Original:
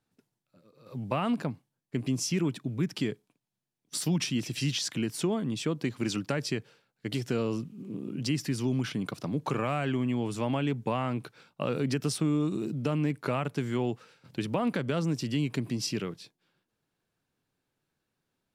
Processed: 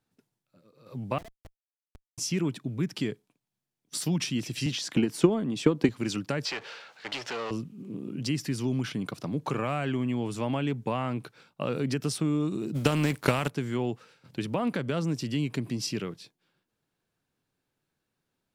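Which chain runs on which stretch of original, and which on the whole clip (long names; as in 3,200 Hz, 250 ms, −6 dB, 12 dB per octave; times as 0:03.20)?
0:01.18–0:02.18: pair of resonant band-passes 1,100 Hz, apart 1.4 octaves + comparator with hysteresis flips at −36 dBFS
0:04.66–0:05.89: high-pass filter 210 Hz + spectral tilt −1.5 dB per octave + transient designer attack +10 dB, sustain +4 dB
0:06.45–0:07.51: high-pass filter 150 Hz + power curve on the samples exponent 0.5 + three-way crossover with the lows and the highs turned down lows −20 dB, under 540 Hz, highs −23 dB, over 6,000 Hz
0:12.74–0:13.48: compressing power law on the bin magnitudes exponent 0.66 + parametric band 62 Hz +8.5 dB 1.5 octaves + transient designer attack +9 dB, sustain +3 dB
whole clip: no processing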